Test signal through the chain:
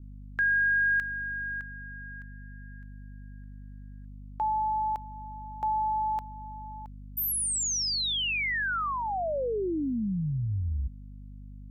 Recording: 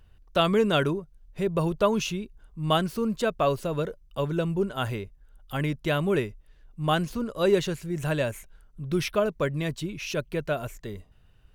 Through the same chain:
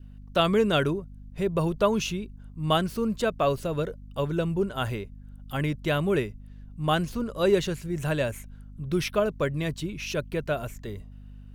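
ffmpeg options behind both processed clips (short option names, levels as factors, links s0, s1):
-af "aeval=exprs='val(0)+0.00708*(sin(2*PI*50*n/s)+sin(2*PI*2*50*n/s)/2+sin(2*PI*3*50*n/s)/3+sin(2*PI*4*50*n/s)/4+sin(2*PI*5*50*n/s)/5)':c=same,adynamicequalizer=threshold=0.01:dfrequency=970:dqfactor=2.9:tfrequency=970:tqfactor=2.9:attack=5:release=100:ratio=0.375:range=2:mode=cutabove:tftype=bell"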